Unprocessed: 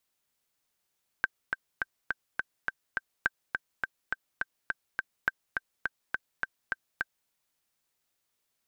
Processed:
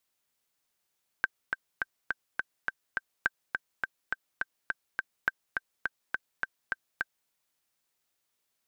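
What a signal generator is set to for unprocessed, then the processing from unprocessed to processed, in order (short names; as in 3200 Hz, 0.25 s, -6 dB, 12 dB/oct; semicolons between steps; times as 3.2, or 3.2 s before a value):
metronome 208 bpm, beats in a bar 7, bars 3, 1560 Hz, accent 4.5 dB -11.5 dBFS
low shelf 180 Hz -3.5 dB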